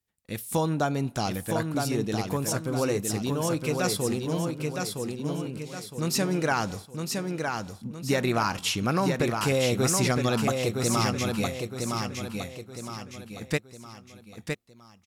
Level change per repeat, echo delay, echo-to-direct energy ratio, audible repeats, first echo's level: -7.5 dB, 963 ms, -3.5 dB, 4, -4.5 dB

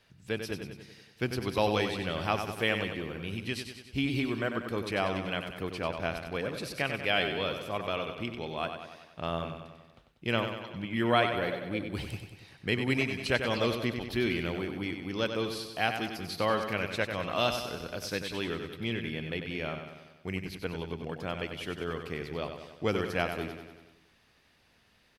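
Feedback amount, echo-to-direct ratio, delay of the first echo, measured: 58%, -5.5 dB, 95 ms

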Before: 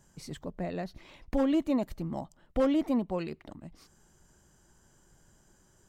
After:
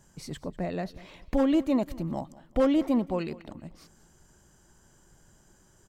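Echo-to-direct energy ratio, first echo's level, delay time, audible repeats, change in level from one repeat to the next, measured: -19.5 dB, -20.0 dB, 194 ms, 2, -8.5 dB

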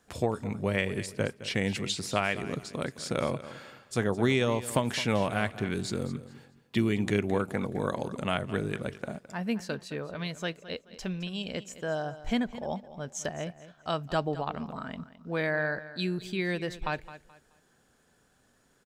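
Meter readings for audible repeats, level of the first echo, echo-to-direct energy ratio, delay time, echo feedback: 2, -15.0 dB, -14.5 dB, 214 ms, 28%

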